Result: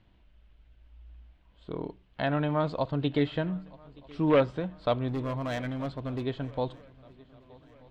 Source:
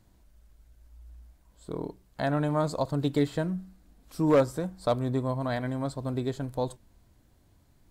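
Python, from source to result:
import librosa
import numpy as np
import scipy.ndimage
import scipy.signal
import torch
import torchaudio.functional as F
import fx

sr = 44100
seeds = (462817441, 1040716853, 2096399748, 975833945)

y = fx.ladder_lowpass(x, sr, hz=3400.0, resonance_pct=55)
y = fx.clip_hard(y, sr, threshold_db=-37.0, at=(5.08, 6.25))
y = fx.echo_swing(y, sr, ms=1232, ratio=3, feedback_pct=46, wet_db=-24.0)
y = y * librosa.db_to_amplitude(9.0)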